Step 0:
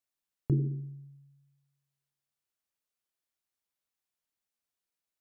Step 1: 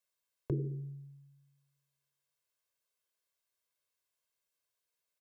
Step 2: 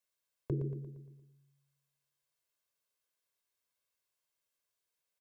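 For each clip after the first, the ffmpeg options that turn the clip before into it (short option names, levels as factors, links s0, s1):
-filter_complex "[0:a]lowshelf=f=110:g=-8.5,aecho=1:1:1.9:0.65,acrossover=split=190[s0][s1];[s0]acompressor=threshold=0.01:ratio=6[s2];[s2][s1]amix=inputs=2:normalize=0,volume=1.12"
-af "aecho=1:1:116|232|348|464|580|696:0.355|0.177|0.0887|0.0444|0.0222|0.0111,volume=0.891"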